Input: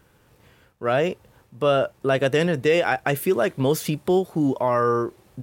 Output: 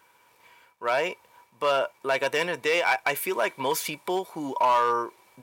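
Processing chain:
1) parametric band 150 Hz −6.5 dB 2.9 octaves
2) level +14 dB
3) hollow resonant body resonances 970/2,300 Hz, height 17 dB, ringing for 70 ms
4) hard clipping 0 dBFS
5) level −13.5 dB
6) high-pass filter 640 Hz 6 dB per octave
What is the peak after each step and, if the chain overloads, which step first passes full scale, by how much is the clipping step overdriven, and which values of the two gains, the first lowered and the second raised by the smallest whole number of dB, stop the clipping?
−7.0, +7.0, +8.0, 0.0, −13.5, −11.0 dBFS
step 2, 8.0 dB
step 2 +6 dB, step 5 −5.5 dB

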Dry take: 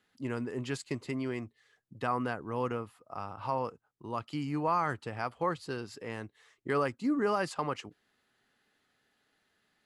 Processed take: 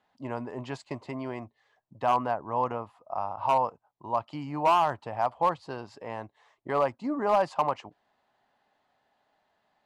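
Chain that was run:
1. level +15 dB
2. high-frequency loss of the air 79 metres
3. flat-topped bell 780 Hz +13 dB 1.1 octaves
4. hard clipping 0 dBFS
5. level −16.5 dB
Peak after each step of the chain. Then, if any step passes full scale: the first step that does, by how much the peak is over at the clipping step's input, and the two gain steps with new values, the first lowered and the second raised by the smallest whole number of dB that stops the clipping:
−3.5, −3.5, +7.0, 0.0, −16.5 dBFS
step 3, 7.0 dB
step 1 +8 dB, step 5 −9.5 dB

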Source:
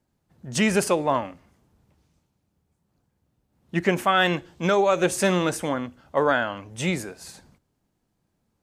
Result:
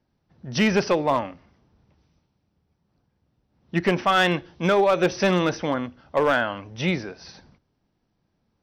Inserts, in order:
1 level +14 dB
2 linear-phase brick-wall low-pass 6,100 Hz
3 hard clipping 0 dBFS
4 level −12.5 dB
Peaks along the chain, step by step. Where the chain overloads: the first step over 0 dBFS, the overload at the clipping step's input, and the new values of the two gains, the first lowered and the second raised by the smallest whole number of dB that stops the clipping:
+7.5, +7.5, 0.0, −12.5 dBFS
step 1, 7.5 dB
step 1 +6 dB, step 4 −4.5 dB

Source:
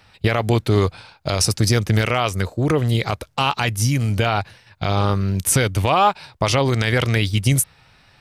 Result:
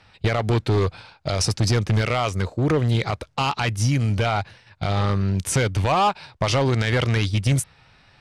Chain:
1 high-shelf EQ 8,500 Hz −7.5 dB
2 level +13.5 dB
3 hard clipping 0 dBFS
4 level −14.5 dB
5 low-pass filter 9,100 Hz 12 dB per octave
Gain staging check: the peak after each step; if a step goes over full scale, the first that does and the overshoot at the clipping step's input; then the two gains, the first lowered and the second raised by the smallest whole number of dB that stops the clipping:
−6.0, +7.5, 0.0, −14.5, −13.5 dBFS
step 2, 7.5 dB
step 2 +5.5 dB, step 4 −6.5 dB

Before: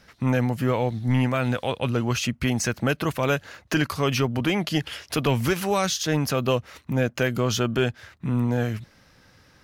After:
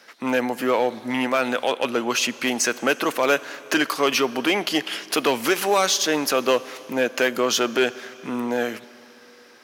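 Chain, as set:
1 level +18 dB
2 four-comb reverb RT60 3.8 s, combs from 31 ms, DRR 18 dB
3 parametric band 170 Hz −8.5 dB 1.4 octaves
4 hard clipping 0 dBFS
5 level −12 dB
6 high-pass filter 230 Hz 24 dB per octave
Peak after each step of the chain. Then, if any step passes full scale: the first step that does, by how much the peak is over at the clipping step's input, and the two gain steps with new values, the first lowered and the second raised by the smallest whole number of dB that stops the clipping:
+6.5, +7.0, +6.0, 0.0, −12.0, −6.0 dBFS
step 1, 6.0 dB
step 1 +12 dB, step 5 −6 dB

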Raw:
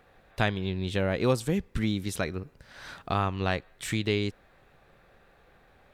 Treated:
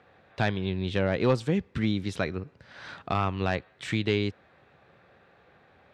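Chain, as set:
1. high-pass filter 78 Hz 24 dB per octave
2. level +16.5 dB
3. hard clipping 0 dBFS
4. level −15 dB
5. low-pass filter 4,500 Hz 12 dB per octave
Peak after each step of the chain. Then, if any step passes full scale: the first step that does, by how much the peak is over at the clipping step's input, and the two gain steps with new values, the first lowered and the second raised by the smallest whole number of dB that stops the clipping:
−7.5, +9.0, 0.0, −15.0, −14.5 dBFS
step 2, 9.0 dB
step 2 +7.5 dB, step 4 −6 dB

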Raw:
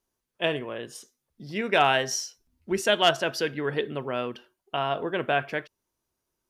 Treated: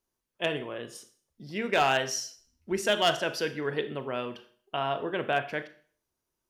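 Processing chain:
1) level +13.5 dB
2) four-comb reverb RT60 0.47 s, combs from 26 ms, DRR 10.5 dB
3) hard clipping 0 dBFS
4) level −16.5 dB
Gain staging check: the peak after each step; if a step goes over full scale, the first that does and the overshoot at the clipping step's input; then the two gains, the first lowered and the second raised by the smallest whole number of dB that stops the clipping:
+4.0, +5.0, 0.0, −16.5 dBFS
step 1, 5.0 dB
step 1 +8.5 dB, step 4 −11.5 dB

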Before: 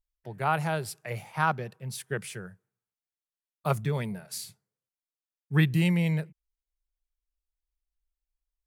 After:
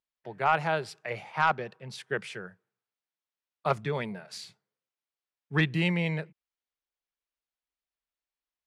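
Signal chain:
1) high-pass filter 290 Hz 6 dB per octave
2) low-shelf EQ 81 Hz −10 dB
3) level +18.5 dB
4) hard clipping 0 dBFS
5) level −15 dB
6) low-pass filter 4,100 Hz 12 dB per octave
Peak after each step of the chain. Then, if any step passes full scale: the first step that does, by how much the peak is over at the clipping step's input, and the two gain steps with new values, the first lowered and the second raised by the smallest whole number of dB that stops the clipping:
−11.5, −11.5, +7.0, 0.0, −15.0, −14.5 dBFS
step 3, 7.0 dB
step 3 +11.5 dB, step 5 −8 dB

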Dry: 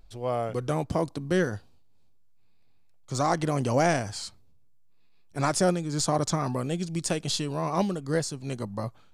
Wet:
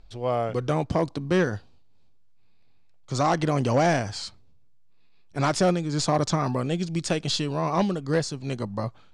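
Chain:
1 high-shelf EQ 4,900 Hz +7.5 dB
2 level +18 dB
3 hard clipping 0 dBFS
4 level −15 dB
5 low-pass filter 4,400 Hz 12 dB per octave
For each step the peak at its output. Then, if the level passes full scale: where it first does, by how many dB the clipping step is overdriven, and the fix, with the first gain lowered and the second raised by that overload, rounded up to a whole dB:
−9.5, +8.5, 0.0, −15.0, −14.5 dBFS
step 2, 8.5 dB
step 2 +9 dB, step 4 −6 dB

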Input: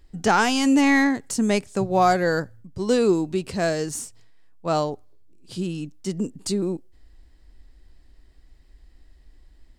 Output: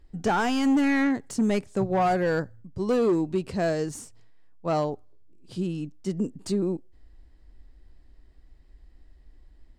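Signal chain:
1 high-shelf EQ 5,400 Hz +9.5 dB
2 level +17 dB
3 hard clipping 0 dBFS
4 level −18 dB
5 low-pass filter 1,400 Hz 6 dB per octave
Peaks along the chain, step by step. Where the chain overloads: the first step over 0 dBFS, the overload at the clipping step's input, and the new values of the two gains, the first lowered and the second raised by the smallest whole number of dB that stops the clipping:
−7.0, +10.0, 0.0, −18.0, −18.0 dBFS
step 2, 10.0 dB
step 2 +7 dB, step 4 −8 dB

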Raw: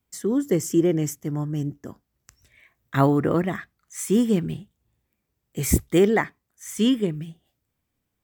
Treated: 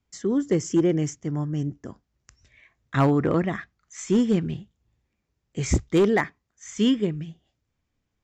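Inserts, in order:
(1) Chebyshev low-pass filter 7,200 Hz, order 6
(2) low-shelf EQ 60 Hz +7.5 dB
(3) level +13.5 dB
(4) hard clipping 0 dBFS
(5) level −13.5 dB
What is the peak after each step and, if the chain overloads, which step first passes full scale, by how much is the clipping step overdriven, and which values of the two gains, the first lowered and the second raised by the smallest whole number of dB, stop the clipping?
−6.5, −6.5, +7.0, 0.0, −13.5 dBFS
step 3, 7.0 dB
step 3 +6.5 dB, step 5 −6.5 dB

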